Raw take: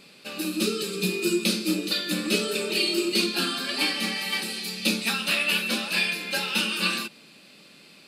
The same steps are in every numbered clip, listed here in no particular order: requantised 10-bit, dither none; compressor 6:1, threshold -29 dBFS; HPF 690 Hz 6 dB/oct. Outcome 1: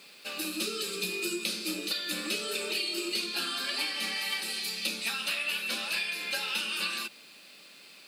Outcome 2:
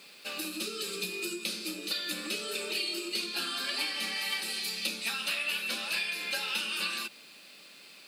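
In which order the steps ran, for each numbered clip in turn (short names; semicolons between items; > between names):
requantised > HPF > compressor; requantised > compressor > HPF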